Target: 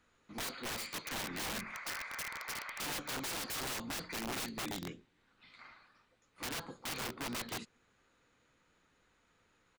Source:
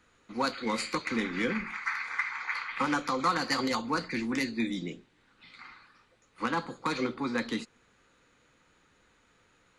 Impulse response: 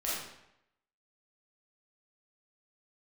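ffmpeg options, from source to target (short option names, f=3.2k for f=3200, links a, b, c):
-filter_complex "[0:a]asplit=3[a][b][c];[b]asetrate=22050,aresample=44100,atempo=2,volume=-13dB[d];[c]asetrate=33038,aresample=44100,atempo=1.33484,volume=-14dB[e];[a][d][e]amix=inputs=3:normalize=0,aeval=exprs='(mod(22.4*val(0)+1,2)-1)/22.4':c=same,volume=-7dB"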